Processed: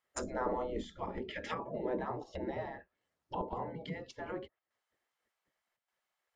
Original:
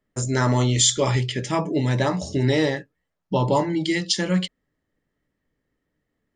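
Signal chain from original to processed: chopper 0.85 Hz, depth 60%, duty 90%; treble ducked by the level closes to 580 Hz, closed at -19.5 dBFS; spectral gate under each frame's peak -15 dB weak

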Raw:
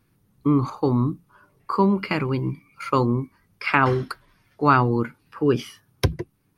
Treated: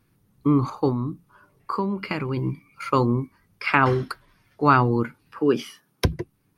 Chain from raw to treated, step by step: 0.89–2.37 compressor 3:1, threshold -24 dBFS, peak gain reduction 8 dB; 5.39–6.05 HPF 170 Hz 24 dB/oct

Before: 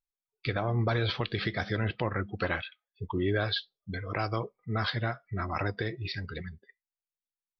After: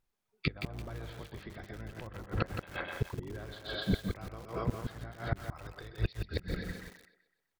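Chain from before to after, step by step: octaver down 1 oct, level -1 dB; 5.42–6.13 ten-band EQ 250 Hz -9 dB, 2000 Hz -3 dB, 4000 Hz +10 dB; on a send: thinning echo 0.127 s, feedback 44%, high-pass 220 Hz, level -7 dB; on the sum: vibrato 5 Hz 6.4 cents; high shelf 2500 Hz -10.5 dB; echo 0.219 s -19.5 dB; flipped gate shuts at -26 dBFS, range -28 dB; in parallel at +1.5 dB: compressor 4:1, threshold -57 dBFS, peak gain reduction 20 dB; on the sum: lo-fi delay 0.169 s, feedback 35%, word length 9-bit, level -6 dB; gain +7.5 dB

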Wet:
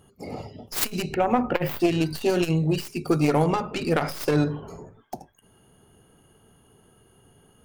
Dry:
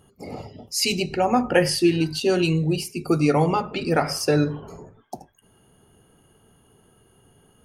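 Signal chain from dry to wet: tracing distortion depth 0.32 ms; 1.14–1.8 band shelf 6900 Hz -12 dB; core saturation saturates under 390 Hz

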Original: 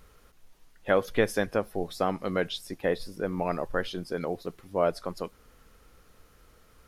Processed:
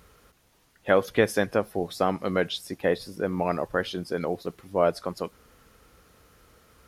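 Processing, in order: HPF 54 Hz; gain +3 dB

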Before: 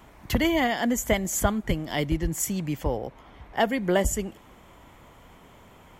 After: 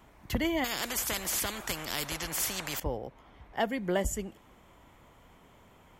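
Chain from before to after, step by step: 0.64–2.8 spectral compressor 4:1; gain -6.5 dB

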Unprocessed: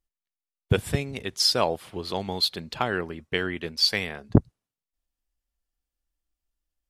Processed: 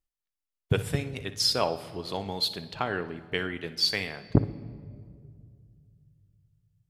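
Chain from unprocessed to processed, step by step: 2.67–3.17 high shelf 6700 Hz -10.5 dB; flutter echo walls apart 10.4 m, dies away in 0.24 s; on a send at -11.5 dB: reverb RT60 2.2 s, pre-delay 6 ms; on the sum: gain -3.5 dB

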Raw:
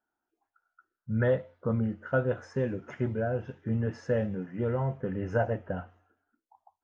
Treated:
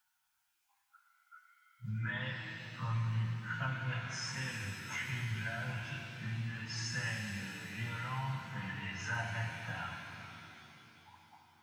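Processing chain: EQ curve 140 Hz 0 dB, 200 Hz -10 dB, 440 Hz -29 dB, 930 Hz +5 dB, 1500 Hz +4 dB, 2300 Hz +15 dB; compressor 3:1, threshold -35 dBFS, peak gain reduction 9.5 dB; plain phase-vocoder stretch 1.7×; shimmer reverb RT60 3.2 s, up +7 st, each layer -8 dB, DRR 2 dB; gain +1 dB

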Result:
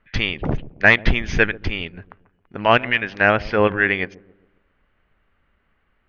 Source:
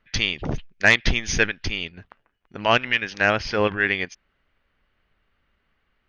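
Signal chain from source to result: LPF 2400 Hz 12 dB/oct; dark delay 0.135 s, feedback 43%, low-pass 600 Hz, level -17.5 dB; gain +4.5 dB

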